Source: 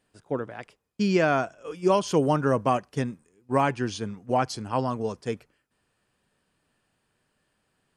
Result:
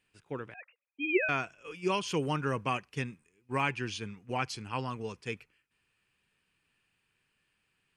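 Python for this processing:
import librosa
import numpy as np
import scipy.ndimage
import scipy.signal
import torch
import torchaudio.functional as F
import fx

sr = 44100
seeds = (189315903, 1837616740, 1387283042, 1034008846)

y = fx.sine_speech(x, sr, at=(0.54, 1.29))
y = fx.graphic_eq_15(y, sr, hz=(250, 630, 2500), db=(-4, -9, 12))
y = y * librosa.db_to_amplitude(-6.0)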